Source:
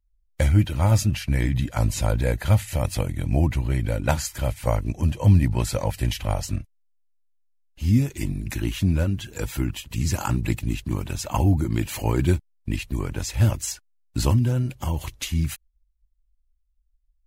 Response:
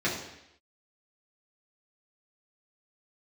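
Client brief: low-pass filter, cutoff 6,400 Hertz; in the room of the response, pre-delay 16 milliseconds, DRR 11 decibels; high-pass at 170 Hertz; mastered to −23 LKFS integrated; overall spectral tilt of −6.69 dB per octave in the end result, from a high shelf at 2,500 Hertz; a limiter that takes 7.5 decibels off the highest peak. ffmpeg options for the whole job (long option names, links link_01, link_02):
-filter_complex "[0:a]highpass=170,lowpass=6400,highshelf=frequency=2500:gain=-8,alimiter=limit=-15.5dB:level=0:latency=1,asplit=2[link_01][link_02];[1:a]atrim=start_sample=2205,adelay=16[link_03];[link_02][link_03]afir=irnorm=-1:irlink=0,volume=-22dB[link_04];[link_01][link_04]amix=inputs=2:normalize=0,volume=7dB"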